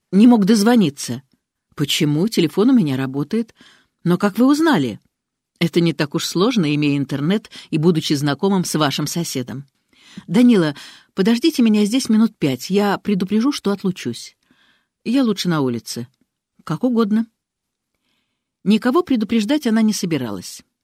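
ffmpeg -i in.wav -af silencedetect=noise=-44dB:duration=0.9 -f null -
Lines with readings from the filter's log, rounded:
silence_start: 17.25
silence_end: 18.65 | silence_duration: 1.40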